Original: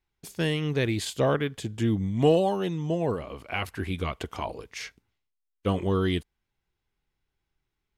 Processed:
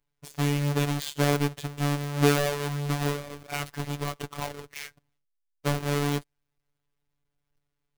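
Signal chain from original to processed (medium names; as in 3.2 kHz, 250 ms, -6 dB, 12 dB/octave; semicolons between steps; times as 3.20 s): square wave that keeps the level; robot voice 144 Hz; trim -3 dB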